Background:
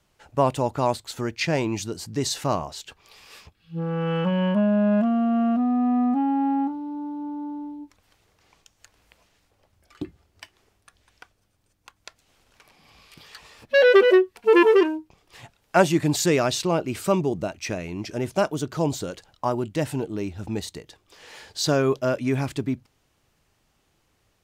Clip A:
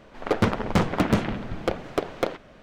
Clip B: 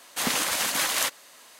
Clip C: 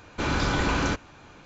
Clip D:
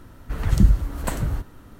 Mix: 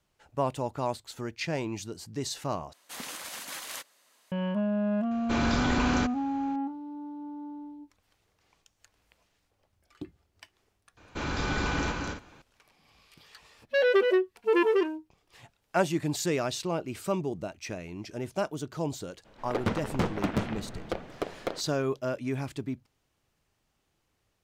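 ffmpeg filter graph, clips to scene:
-filter_complex "[3:a]asplit=2[a][b];[0:a]volume=-8dB[c];[b]aecho=1:1:212.8|265.3:0.631|0.355[d];[c]asplit=2[e][f];[e]atrim=end=2.734[g];[2:a]atrim=end=1.59,asetpts=PTS-STARTPTS,volume=-14dB[h];[f]atrim=start=4.316[i];[a]atrim=end=1.45,asetpts=PTS-STARTPTS,volume=-3dB,afade=t=in:d=0.004:c=hsin,afade=t=out:st=1.446:d=0.004:c=hsin,adelay=5110[j];[d]atrim=end=1.45,asetpts=PTS-STARTPTS,volume=-6.5dB,afade=t=in:d=0.004:c=hsin,afade=t=out:st=1.446:d=0.004:c=hsin,adelay=10970[k];[1:a]atrim=end=2.62,asetpts=PTS-STARTPTS,volume=-7.5dB,afade=t=in:d=0.02,afade=t=out:st=2.6:d=0.02,adelay=848484S[l];[g][h]acrossfade=d=0.004:c1=hsin:c2=hsin[m];[m][i]acrossfade=d=0.004:c1=hsin:c2=hsin[n];[n][j][k][l]amix=inputs=4:normalize=0"

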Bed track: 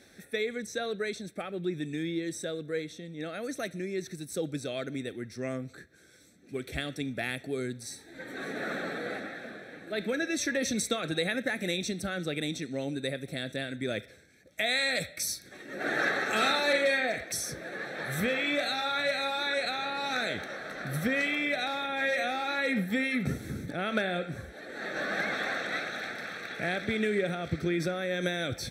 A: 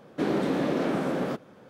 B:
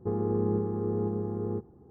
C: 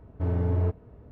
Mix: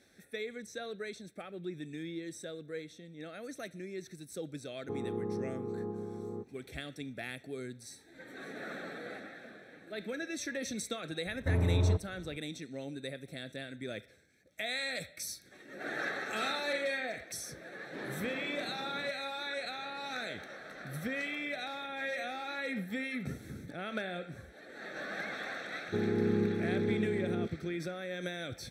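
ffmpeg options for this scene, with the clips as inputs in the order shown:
-filter_complex "[2:a]asplit=2[a][b];[0:a]volume=-8dB[c];[a]lowshelf=f=120:g=-11.5[d];[b]equalizer=f=250:w=0.44:g=13[e];[d]atrim=end=1.9,asetpts=PTS-STARTPTS,volume=-6.5dB,afade=t=in:d=0.004:c=hsin,afade=t=out:st=1.896:d=0.004:c=hsin,adelay=4830[f];[3:a]atrim=end=1.11,asetpts=PTS-STARTPTS,volume=-2.5dB,afade=t=in:d=0.004:c=hsin,afade=t=out:st=1.106:d=0.004:c=hsin,adelay=11260[g];[1:a]atrim=end=1.69,asetpts=PTS-STARTPTS,volume=-18dB,afade=t=in:d=0.004:c=hsin,afade=t=out:st=1.686:d=0.004:c=hsin,adelay=17740[h];[e]atrim=end=1.9,asetpts=PTS-STARTPTS,volume=-13dB,afade=t=in:d=0.004:c=hsin,afade=t=out:st=1.896:d=0.004:c=hsin,adelay=25870[i];[c][f][g][h][i]amix=inputs=5:normalize=0"

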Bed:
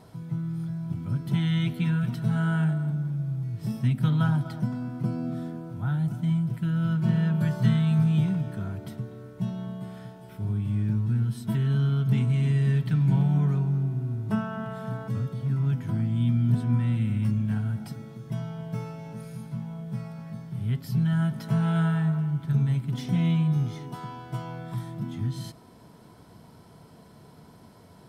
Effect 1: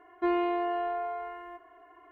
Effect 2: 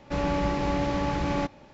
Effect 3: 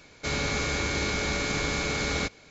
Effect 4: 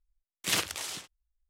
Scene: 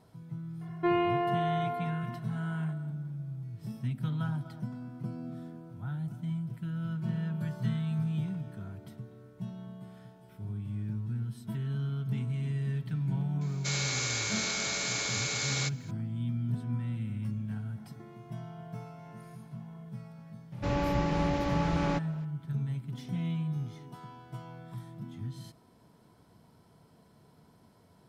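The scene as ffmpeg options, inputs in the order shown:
-filter_complex "[1:a]asplit=2[a][b];[0:a]volume=-9.5dB[c];[a]equalizer=f=2.7k:t=o:w=0.72:g=4[d];[3:a]aemphasis=mode=production:type=riaa[e];[b]acompressor=threshold=-42dB:ratio=6:attack=3.2:release=140:knee=1:detection=peak[f];[d]atrim=end=2.11,asetpts=PTS-STARTPTS,afade=t=in:d=0.004:c=hsin,afade=t=out:st=2.106:d=0.004:c=hsin,adelay=610[g];[e]atrim=end=2.5,asetpts=PTS-STARTPTS,volume=-7.5dB,afade=t=in:d=0.004:c=hsin,afade=t=out:st=2.496:d=0.004:c=hsin,adelay=13410[h];[f]atrim=end=2.11,asetpts=PTS-STARTPTS,volume=-9dB,afade=t=in:d=0.004:c=hsin,afade=t=out:st=2.106:d=0.004:c=hsin,adelay=17780[i];[2:a]atrim=end=1.73,asetpts=PTS-STARTPTS,volume=-3.5dB,afade=t=in:d=0.004:c=hsin,afade=t=out:st=1.726:d=0.004:c=hsin,adelay=904932S[j];[c][g][h][i][j]amix=inputs=5:normalize=0"

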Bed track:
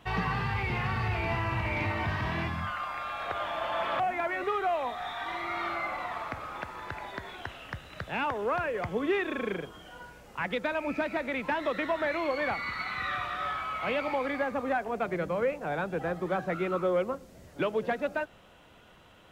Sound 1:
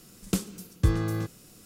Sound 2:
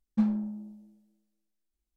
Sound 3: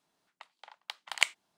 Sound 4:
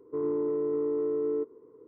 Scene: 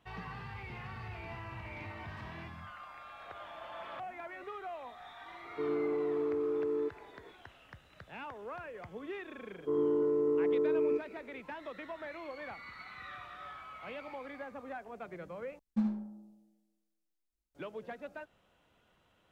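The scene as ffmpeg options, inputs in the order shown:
-filter_complex "[2:a]asplit=2[a][b];[4:a]asplit=2[c][d];[0:a]volume=-14dB[e];[a]highpass=1k[f];[b]aecho=1:1:74:0.447[g];[e]asplit=2[h][i];[h]atrim=end=15.594[j];[g]atrim=end=1.96,asetpts=PTS-STARTPTS,volume=-6dB[k];[i]atrim=start=17.546[l];[f]atrim=end=1.96,asetpts=PTS-STARTPTS,volume=-9.5dB,afade=t=in:d=0.004:c=hsin,afade=t=out:st=1.956:d=0.004:c=hsin,adelay=1990[m];[c]atrim=end=1.87,asetpts=PTS-STARTPTS,volume=-4dB,afade=t=in:d=0.004:c=hsin,afade=t=out:st=1.866:d=0.004:c=hsin,adelay=240345S[n];[d]atrim=end=1.87,asetpts=PTS-STARTPTS,volume=-0.5dB,afade=t=in:d=0.004:c=hsin,afade=t=out:st=1.866:d=0.004:c=hsin,adelay=420714S[o];[j][k]acrossfade=d=0.004:c1=hsin:c2=hsin[p];[p][l]acrossfade=d=0.004:c1=hsin:c2=hsin[q];[q][m][n][o]amix=inputs=4:normalize=0"

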